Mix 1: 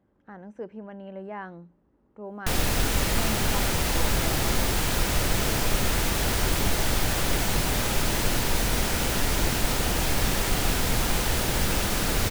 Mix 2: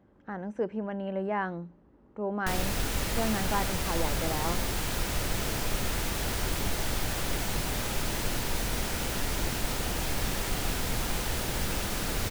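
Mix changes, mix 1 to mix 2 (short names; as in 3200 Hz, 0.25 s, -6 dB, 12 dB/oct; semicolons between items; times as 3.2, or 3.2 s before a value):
speech +6.5 dB; background -6.0 dB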